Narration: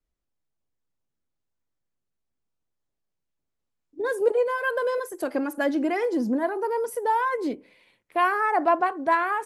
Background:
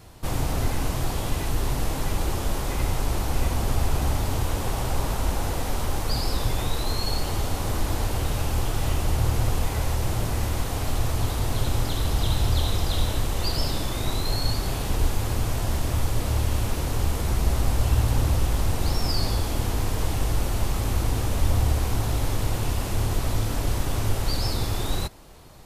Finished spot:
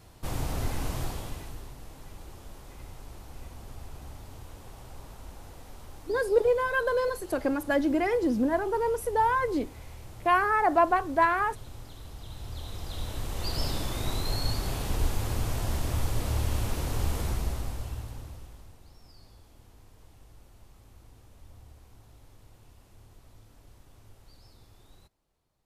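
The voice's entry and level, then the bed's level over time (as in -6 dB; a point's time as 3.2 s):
2.10 s, -1.0 dB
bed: 1.02 s -6 dB
1.74 s -20 dB
12.24 s -20 dB
13.64 s -4.5 dB
17.22 s -4.5 dB
18.86 s -30 dB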